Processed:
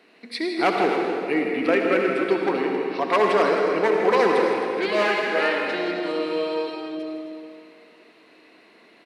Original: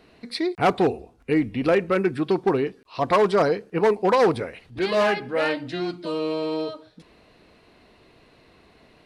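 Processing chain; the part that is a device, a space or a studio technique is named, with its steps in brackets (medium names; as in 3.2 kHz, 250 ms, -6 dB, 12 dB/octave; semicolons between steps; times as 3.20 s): stadium PA (high-pass 220 Hz 24 dB/octave; peaking EQ 2.1 kHz +6 dB 0.97 oct; loudspeakers at several distances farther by 55 m -11 dB, 91 m -11 dB; reverberation RT60 2.7 s, pre-delay 60 ms, DRR 1.5 dB); trim -2.5 dB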